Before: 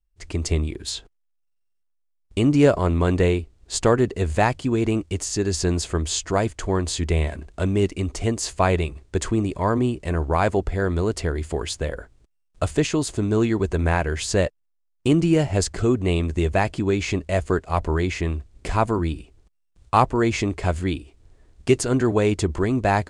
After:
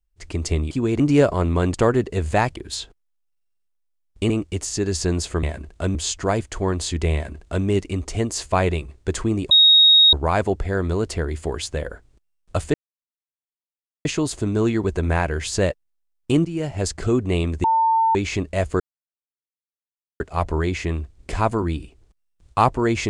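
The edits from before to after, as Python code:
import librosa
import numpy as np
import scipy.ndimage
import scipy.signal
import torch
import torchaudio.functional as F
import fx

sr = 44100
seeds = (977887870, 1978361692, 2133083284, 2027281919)

y = fx.edit(x, sr, fx.swap(start_s=0.71, length_s=1.74, other_s=4.6, other_length_s=0.29),
    fx.cut(start_s=3.19, length_s=0.59),
    fx.duplicate(start_s=7.21, length_s=0.52, to_s=6.02),
    fx.bleep(start_s=9.58, length_s=0.62, hz=3760.0, db=-9.0),
    fx.insert_silence(at_s=12.81, length_s=1.31),
    fx.fade_in_from(start_s=15.21, length_s=0.58, floor_db=-13.0),
    fx.bleep(start_s=16.4, length_s=0.51, hz=899.0, db=-14.5),
    fx.insert_silence(at_s=17.56, length_s=1.4), tone=tone)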